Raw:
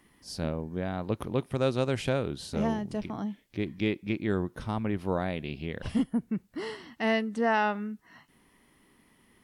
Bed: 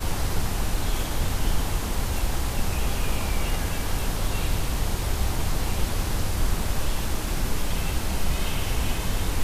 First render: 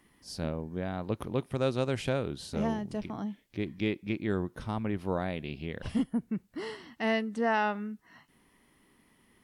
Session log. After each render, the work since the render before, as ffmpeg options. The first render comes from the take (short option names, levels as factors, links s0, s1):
-af "volume=0.794"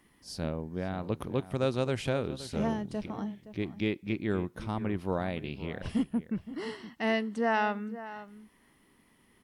-filter_complex "[0:a]asplit=2[s0][s1];[s1]adelay=519,volume=0.2,highshelf=f=4000:g=-11.7[s2];[s0][s2]amix=inputs=2:normalize=0"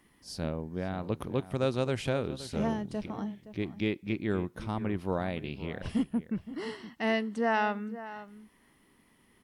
-af anull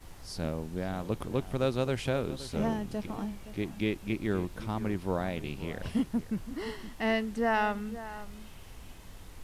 -filter_complex "[1:a]volume=0.0708[s0];[0:a][s0]amix=inputs=2:normalize=0"